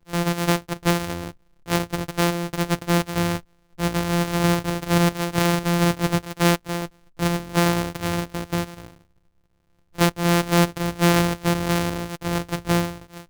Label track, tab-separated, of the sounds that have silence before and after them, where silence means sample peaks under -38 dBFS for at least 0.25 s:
1.660000	3.400000	sound
3.780000	6.870000	sound
7.190000	8.920000	sound